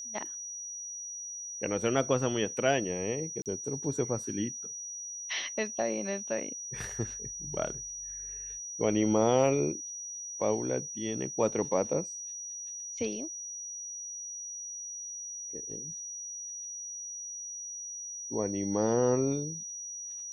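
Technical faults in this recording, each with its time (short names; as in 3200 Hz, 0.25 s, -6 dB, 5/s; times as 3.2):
tone 5800 Hz -38 dBFS
3.42–3.46 gap 38 ms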